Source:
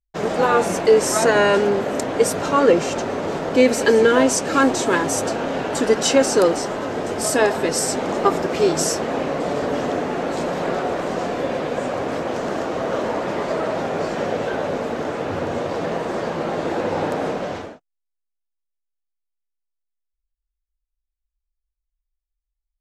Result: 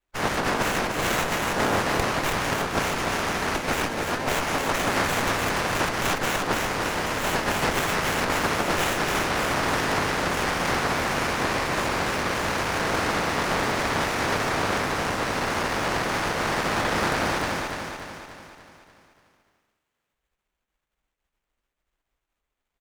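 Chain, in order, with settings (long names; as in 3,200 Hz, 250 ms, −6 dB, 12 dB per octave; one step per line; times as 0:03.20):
ceiling on every frequency bin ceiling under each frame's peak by 25 dB
compressor whose output falls as the input rises −19 dBFS, ratio −0.5
repeating echo 292 ms, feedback 52%, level −5 dB
windowed peak hold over 9 samples
level −3 dB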